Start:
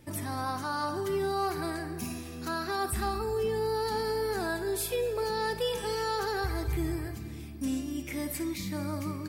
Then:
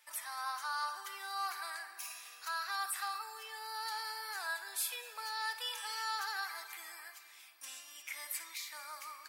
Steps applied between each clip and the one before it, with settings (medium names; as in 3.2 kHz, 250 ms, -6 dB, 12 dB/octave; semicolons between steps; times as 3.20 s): high-pass 990 Hz 24 dB/octave; trim -2 dB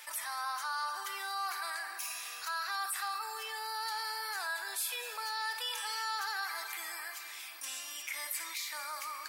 level flattener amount 50%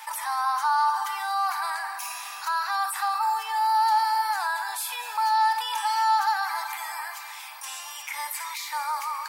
resonant high-pass 880 Hz, resonance Q 6.6; trim +3.5 dB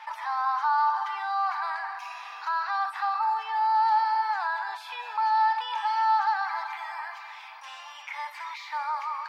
distance through air 250 m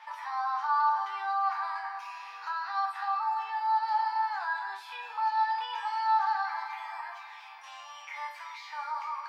chord resonator D#2 major, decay 0.34 s; trim +7.5 dB